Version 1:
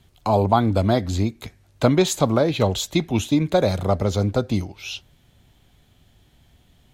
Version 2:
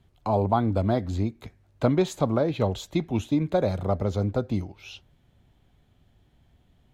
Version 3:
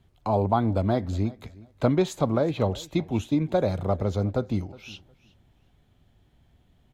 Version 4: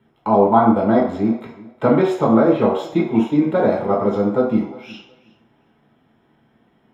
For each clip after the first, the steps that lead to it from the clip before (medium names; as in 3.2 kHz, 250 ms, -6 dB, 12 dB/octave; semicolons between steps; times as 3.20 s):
treble shelf 2.6 kHz -11 dB; trim -4.5 dB
feedback delay 363 ms, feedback 18%, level -21.5 dB
reverberation RT60 0.60 s, pre-delay 3 ms, DRR -4 dB; trim -5.5 dB